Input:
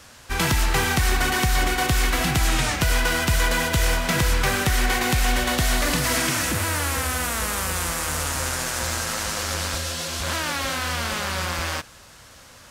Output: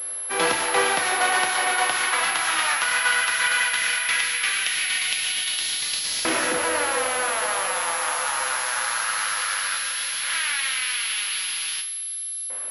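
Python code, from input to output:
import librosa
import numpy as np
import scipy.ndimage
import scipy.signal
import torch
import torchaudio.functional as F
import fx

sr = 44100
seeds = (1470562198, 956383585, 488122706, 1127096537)

y = fx.rev_double_slope(x, sr, seeds[0], early_s=0.56, late_s=4.4, knee_db=-18, drr_db=3.0)
y = fx.filter_lfo_highpass(y, sr, shape='saw_up', hz=0.16, low_hz=400.0, high_hz=4300.0, q=1.5)
y = fx.pwm(y, sr, carrier_hz=11000.0)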